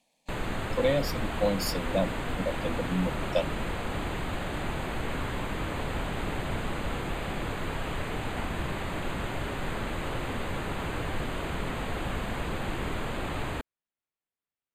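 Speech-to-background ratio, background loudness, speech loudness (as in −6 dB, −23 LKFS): 2.0 dB, −33.5 LKFS, −31.5 LKFS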